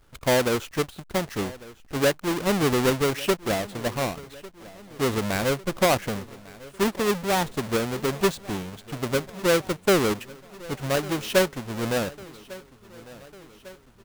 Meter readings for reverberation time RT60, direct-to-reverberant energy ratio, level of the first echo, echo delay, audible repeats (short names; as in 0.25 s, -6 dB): none, none, -20.0 dB, 1.15 s, 4